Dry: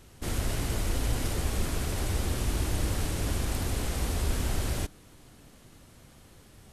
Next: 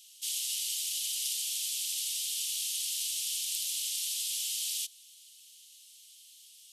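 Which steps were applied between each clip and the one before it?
elliptic high-pass filter 3,000 Hz, stop band 60 dB
level +7.5 dB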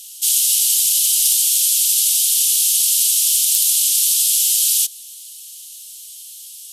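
sine wavefolder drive 4 dB, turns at −14.5 dBFS
RIAA equalisation recording
level −1 dB

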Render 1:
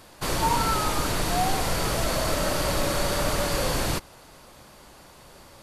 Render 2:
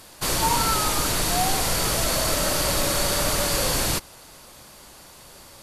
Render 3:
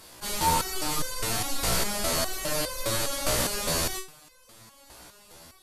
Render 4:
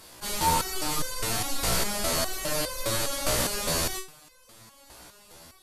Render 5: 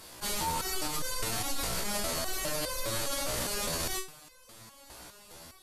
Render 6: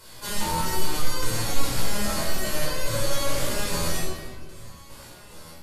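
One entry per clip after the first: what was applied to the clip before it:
parametric band 13,000 Hz +8.5 dB 2.6 octaves
step-sequenced resonator 4.9 Hz 61–510 Hz; level +5.5 dB
no processing that can be heard
brickwall limiter −23 dBFS, peak gain reduction 10.5 dB
rectangular room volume 1,800 cubic metres, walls mixed, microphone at 4.9 metres; level −3 dB

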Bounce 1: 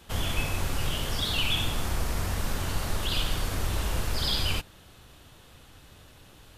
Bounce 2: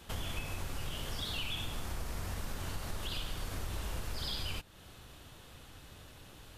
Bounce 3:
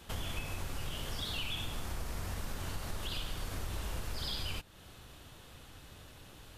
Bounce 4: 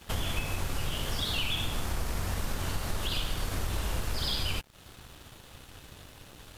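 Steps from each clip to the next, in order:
downward compressor 2.5 to 1, threshold −38 dBFS, peak gain reduction 12 dB; level −1 dB
no processing that can be heard
dead-zone distortion −58 dBFS; level +7.5 dB

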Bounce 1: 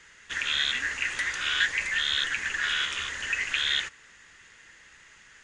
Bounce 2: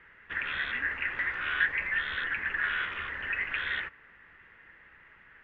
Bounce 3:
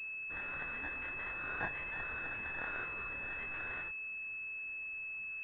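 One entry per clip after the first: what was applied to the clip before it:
low-pass filter 2,200 Hz 24 dB per octave
multi-voice chorus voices 4, 0.6 Hz, delay 24 ms, depth 5 ms; switching amplifier with a slow clock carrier 2,600 Hz

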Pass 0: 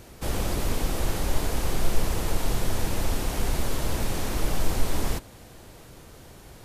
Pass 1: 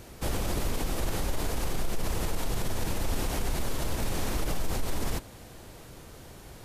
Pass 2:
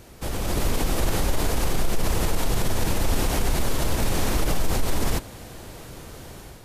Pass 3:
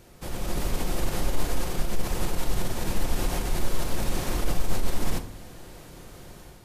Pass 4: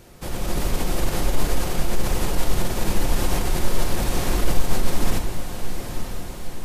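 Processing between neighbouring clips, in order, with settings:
brickwall limiter −20 dBFS, peak gain reduction 10.5 dB
automatic gain control gain up to 7 dB
rectangular room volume 740 cubic metres, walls furnished, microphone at 0.92 metres; level −6 dB
feedback delay with all-pass diffusion 904 ms, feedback 55%, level −8.5 dB; level +4.5 dB

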